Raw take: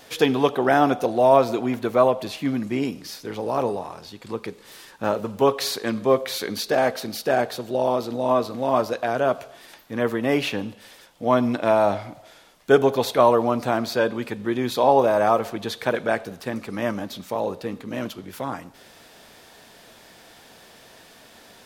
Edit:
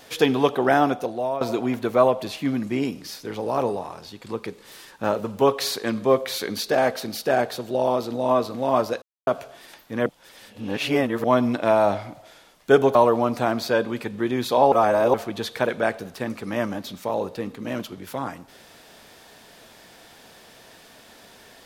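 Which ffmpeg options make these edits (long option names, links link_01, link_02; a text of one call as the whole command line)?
ffmpeg -i in.wav -filter_complex "[0:a]asplit=9[link_01][link_02][link_03][link_04][link_05][link_06][link_07][link_08][link_09];[link_01]atrim=end=1.41,asetpts=PTS-STARTPTS,afade=type=out:start_time=0.71:duration=0.7:silence=0.158489[link_10];[link_02]atrim=start=1.41:end=9.02,asetpts=PTS-STARTPTS,afade=type=in:duration=0.004:curve=hsin:silence=0.158489,afade=type=out:start_time=7.606:duration=0.004:curve=hsin[link_11];[link_03]atrim=start=9.02:end=9.27,asetpts=PTS-STARTPTS,volume=0[link_12];[link_04]atrim=start=9.27:end=10.062,asetpts=PTS-STARTPTS,afade=type=in:duration=0.004:curve=hsin[link_13];[link_05]atrim=start=10.058:end=11.242,asetpts=PTS-STARTPTS,areverse[link_14];[link_06]atrim=start=11.238:end=12.952[link_15];[link_07]atrim=start=13.208:end=14.982[link_16];[link_08]atrim=start=14.978:end=15.402,asetpts=PTS-STARTPTS,areverse[link_17];[link_09]atrim=start=15.398[link_18];[link_10][link_11][link_12][link_13]concat=n=4:v=0:a=1[link_19];[link_19][link_14]acrossfade=duration=0.004:curve1=hsin:curve2=hsin[link_20];[link_20][link_15]acrossfade=duration=0.004:curve1=hsin:curve2=hsin[link_21];[link_21][link_16]acrossfade=duration=0.004:curve1=hsin:curve2=hsin[link_22];[link_22][link_17]acrossfade=duration=0.004:curve1=hsin:curve2=hsin[link_23];[link_23][link_18]acrossfade=duration=0.004:curve1=hsin:curve2=hsin" out.wav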